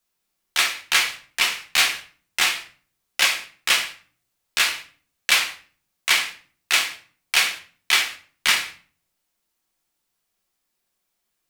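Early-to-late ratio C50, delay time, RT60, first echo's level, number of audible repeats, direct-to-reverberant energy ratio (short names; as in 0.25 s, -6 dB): 11.5 dB, none, 0.45 s, none, none, 2.0 dB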